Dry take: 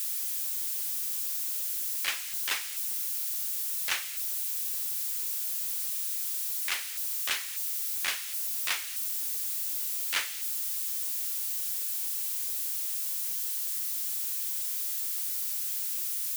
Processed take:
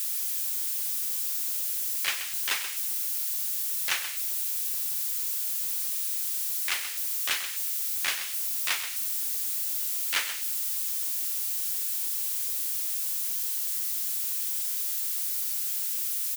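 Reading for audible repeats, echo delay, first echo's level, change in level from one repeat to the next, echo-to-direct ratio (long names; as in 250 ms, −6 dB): 1, 130 ms, −10.5 dB, repeats not evenly spaced, −10.5 dB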